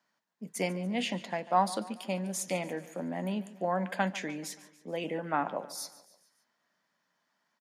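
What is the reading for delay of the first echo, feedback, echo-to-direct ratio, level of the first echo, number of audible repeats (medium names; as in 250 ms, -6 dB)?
144 ms, 52%, -16.0 dB, -17.5 dB, 4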